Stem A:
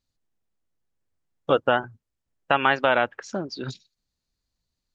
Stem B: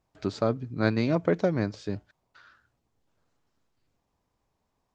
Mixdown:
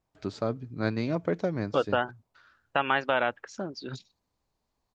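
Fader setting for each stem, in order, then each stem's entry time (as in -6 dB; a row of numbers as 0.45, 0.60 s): -5.5, -4.0 dB; 0.25, 0.00 s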